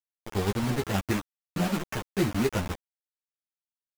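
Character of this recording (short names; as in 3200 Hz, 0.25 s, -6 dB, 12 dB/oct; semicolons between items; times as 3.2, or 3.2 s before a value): aliases and images of a low sample rate 4300 Hz, jitter 20%; tremolo saw down 6.4 Hz, depth 50%; a quantiser's noise floor 6-bit, dither none; a shimmering, thickened sound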